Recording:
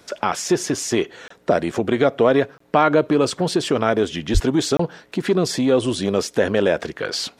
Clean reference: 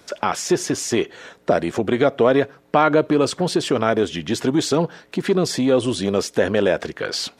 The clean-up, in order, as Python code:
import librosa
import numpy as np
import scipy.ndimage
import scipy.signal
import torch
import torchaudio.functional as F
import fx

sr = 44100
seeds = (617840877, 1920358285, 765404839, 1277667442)

y = fx.fix_deplosive(x, sr, at_s=(4.33,))
y = fx.fix_interpolate(y, sr, at_s=(1.28, 2.58, 4.77), length_ms=24.0)